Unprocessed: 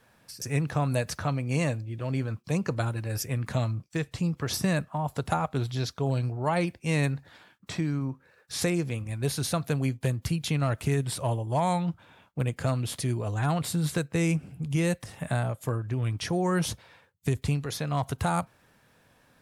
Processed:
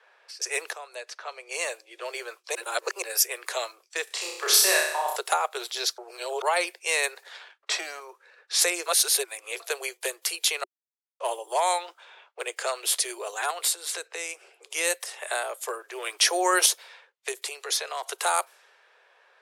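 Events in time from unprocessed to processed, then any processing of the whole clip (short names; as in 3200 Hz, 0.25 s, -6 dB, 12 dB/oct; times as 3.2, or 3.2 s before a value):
0.73–1.94 fade in quadratic, from -13 dB
2.55–3.02 reverse
4.04–5.16 flutter echo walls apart 5.4 m, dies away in 0.75 s
5.98–6.42 reverse
7.16–8 sample leveller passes 1
8.86–9.6 reverse
10.64–11.2 mute
11.78–12.83 bell 12000 Hz -13.5 dB 0.32 oct
13.5–14.74 compressor, threshold -30 dBFS
15.95–16.66 gain +4.5 dB
17.31–18.06 compressor 4:1, threshold -28 dBFS
whole clip: low-pass opened by the level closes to 2400 Hz, open at -27.5 dBFS; steep high-pass 370 Hz 96 dB/oct; tilt +3 dB/oct; gain +4 dB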